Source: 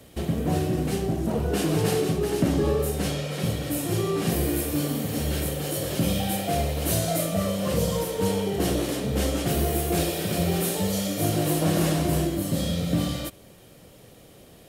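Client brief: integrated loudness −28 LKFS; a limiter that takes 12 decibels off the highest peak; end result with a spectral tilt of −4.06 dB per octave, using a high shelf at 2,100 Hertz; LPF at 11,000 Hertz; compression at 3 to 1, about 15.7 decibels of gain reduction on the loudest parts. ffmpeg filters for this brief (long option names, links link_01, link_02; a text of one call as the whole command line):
ffmpeg -i in.wav -af "lowpass=11000,highshelf=frequency=2100:gain=8,acompressor=threshold=-39dB:ratio=3,volume=15.5dB,alimiter=limit=-19.5dB:level=0:latency=1" out.wav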